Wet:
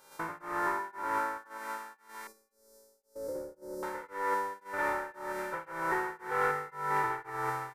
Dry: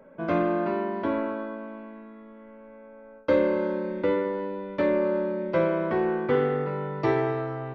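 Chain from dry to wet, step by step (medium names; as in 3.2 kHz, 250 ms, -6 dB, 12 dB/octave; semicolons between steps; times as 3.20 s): spectrogram pixelated in time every 200 ms; saturation -24.5 dBFS, distortion -12 dB; high-order bell 1.3 kHz +16 dB; comb 2.2 ms, depth 62%; on a send: feedback echo behind a high-pass 650 ms, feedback 65%, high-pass 2.4 kHz, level -3 dB; on the sum: mains buzz 400 Hz, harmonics 36, -45 dBFS 0 dB/octave; 2.27–3.83 s: FFT filter 560 Hz 0 dB, 870 Hz -21 dB, 2.8 kHz -30 dB, 4.9 kHz -2 dB; tremolo triangle 1.9 Hz, depth 100%; feedback comb 160 Hz, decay 0.66 s, harmonics odd, mix 60%; gate -49 dBFS, range -7 dB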